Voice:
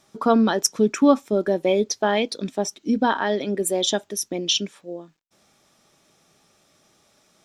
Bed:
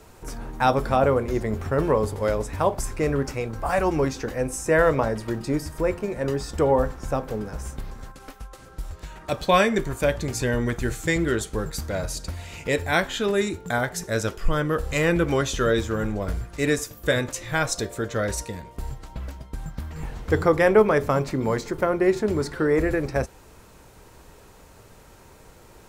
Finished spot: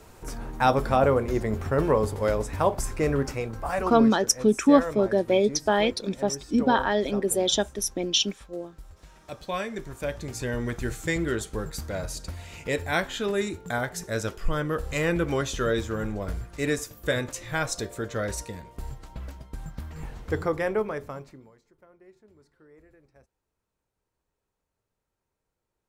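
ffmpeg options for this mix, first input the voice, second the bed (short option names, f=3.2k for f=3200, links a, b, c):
-filter_complex "[0:a]adelay=3650,volume=-1.5dB[a];[1:a]volume=7.5dB,afade=t=out:st=3.26:d=0.93:silence=0.266073,afade=t=in:st=9.68:d=1.19:silence=0.375837,afade=t=out:st=19.94:d=1.57:silence=0.0316228[b];[a][b]amix=inputs=2:normalize=0"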